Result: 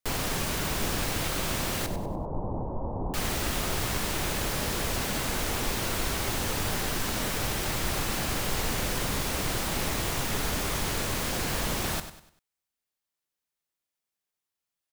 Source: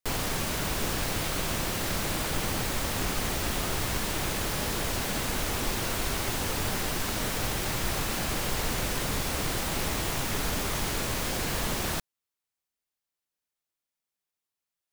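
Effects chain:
0:01.86–0:03.14: Chebyshev low-pass filter 980 Hz, order 5
repeating echo 98 ms, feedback 37%, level −11 dB

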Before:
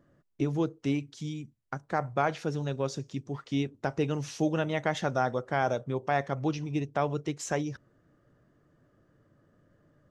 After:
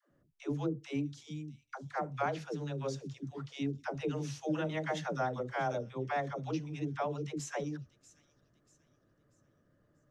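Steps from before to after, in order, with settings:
all-pass dispersion lows, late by 112 ms, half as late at 400 Hz
on a send: delay with a high-pass on its return 638 ms, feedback 38%, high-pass 3,800 Hz, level −16 dB
on the sum: level −6 dB

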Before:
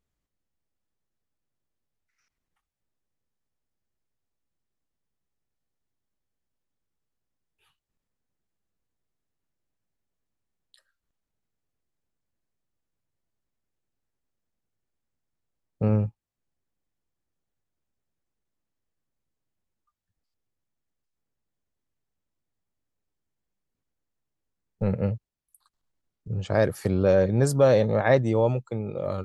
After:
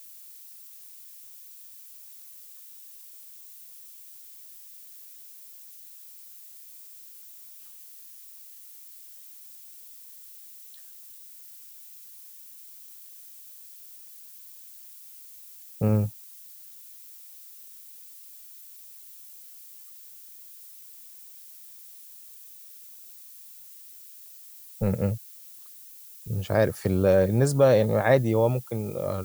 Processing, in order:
background noise violet −47 dBFS

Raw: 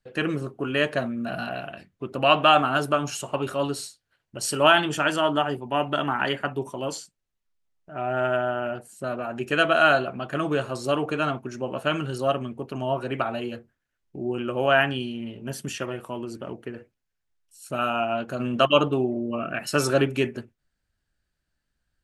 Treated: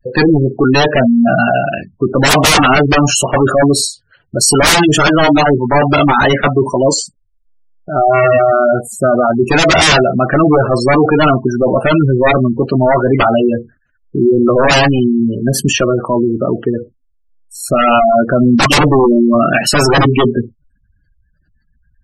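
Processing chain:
sine wavefolder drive 18 dB, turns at −4.5 dBFS
gate on every frequency bin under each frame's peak −15 dB strong

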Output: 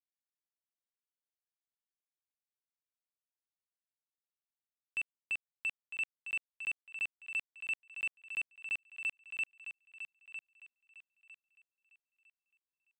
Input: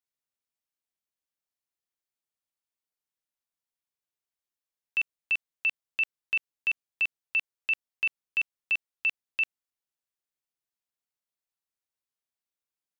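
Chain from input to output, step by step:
leveller curve on the samples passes 3
high-frequency loss of the air 120 metres
feedback echo with a high-pass in the loop 954 ms, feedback 28%, high-pass 570 Hz, level −9 dB
level −8.5 dB

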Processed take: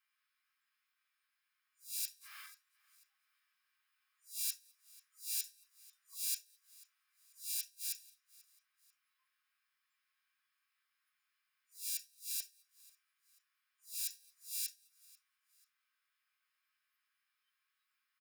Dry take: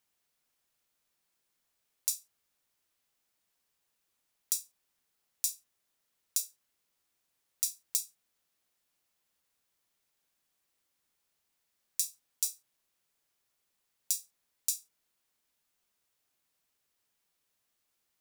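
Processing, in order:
peak hold with a rise ahead of every peak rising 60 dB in 0.32 s
0:02.18–0:04.54: transient designer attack −4 dB, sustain +9 dB
noise reduction from a noise print of the clip's start 22 dB
gate with flip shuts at −22 dBFS, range −26 dB
high-pass filter 1,500 Hz 24 dB per octave
convolution reverb RT60 0.15 s, pre-delay 3 ms, DRR −7.5 dB
downward compressor 5 to 1, threshold −51 dBFS, peak gain reduction 18 dB
repeating echo 490 ms, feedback 38%, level −23.5 dB
speech leveller within 4 dB 0.5 s
level +13 dB

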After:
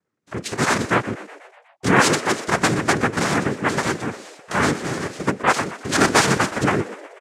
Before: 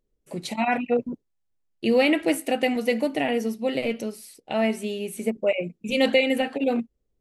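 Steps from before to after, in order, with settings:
cochlear-implant simulation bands 3
0:02.00–0:02.48: high-pass filter 300 Hz 6 dB per octave
on a send: echo with shifted repeats 122 ms, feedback 61%, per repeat +92 Hz, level −16 dB
on the sum: level +4 dB

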